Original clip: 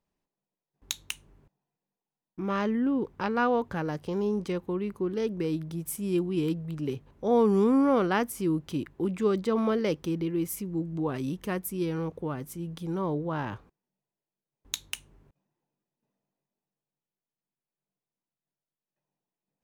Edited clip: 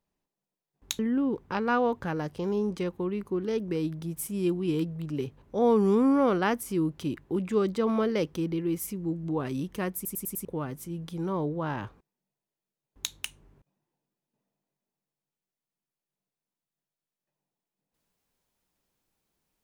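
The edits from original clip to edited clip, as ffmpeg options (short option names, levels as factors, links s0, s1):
-filter_complex "[0:a]asplit=7[s0][s1][s2][s3][s4][s5][s6];[s0]atrim=end=0.992[s7];[s1]atrim=start=2.678:end=11.742[s8];[s2]atrim=start=11.638:end=11.742[s9];[s3]atrim=start=11.638:end=11.742[s10];[s4]atrim=start=11.638:end=11.742[s11];[s5]atrim=start=11.638:end=11.742[s12];[s6]atrim=start=12.138[s13];[s7][s8]acrossfade=d=0.004:c1=hsin:c2=hsin[s14];[s14][s9]acrossfade=d=0.004:c1=hsin:c2=hsin[s15];[s15][s10]acrossfade=d=0.004:c1=hsin:c2=hsin[s16];[s16][s11]acrossfade=d=0.004:c1=hsin:c2=hsin[s17];[s17][s12]acrossfade=d=0.004:c1=hsin:c2=hsin[s18];[s18][s13]acrossfade=d=0.004:c1=hsin:c2=hsin"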